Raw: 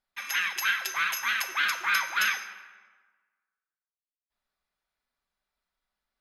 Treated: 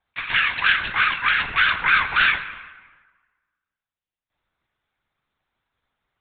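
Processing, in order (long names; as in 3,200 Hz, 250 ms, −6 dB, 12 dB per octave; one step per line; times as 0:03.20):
linear-prediction vocoder at 8 kHz whisper
level +8.5 dB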